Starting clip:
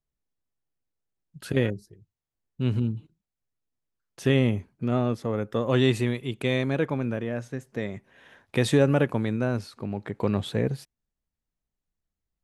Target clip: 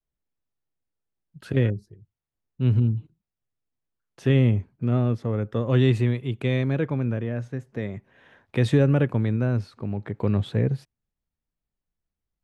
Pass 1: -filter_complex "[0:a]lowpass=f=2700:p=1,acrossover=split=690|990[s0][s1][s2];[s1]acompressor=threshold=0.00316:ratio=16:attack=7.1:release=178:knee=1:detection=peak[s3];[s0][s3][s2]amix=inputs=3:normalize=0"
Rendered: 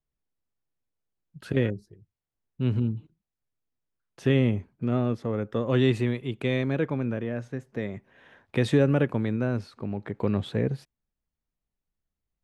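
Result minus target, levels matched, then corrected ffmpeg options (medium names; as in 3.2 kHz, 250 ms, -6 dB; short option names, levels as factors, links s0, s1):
125 Hz band -3.0 dB
-filter_complex "[0:a]lowpass=f=2700:p=1,adynamicequalizer=threshold=0.0112:dfrequency=110:dqfactor=1.4:tfrequency=110:tqfactor=1.4:attack=5:release=100:ratio=0.417:range=3.5:mode=boostabove:tftype=bell,acrossover=split=690|990[s0][s1][s2];[s1]acompressor=threshold=0.00316:ratio=16:attack=7.1:release=178:knee=1:detection=peak[s3];[s0][s3][s2]amix=inputs=3:normalize=0"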